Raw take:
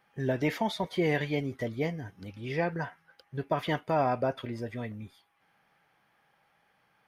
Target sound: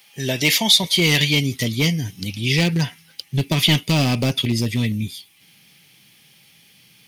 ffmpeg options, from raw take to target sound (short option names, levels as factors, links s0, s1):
-af "highpass=120,asubboost=boost=9.5:cutoff=240,aeval=exprs='clip(val(0),-1,0.126)':c=same,aexciter=amount=5.4:drive=9.5:freq=2300,volume=1.78"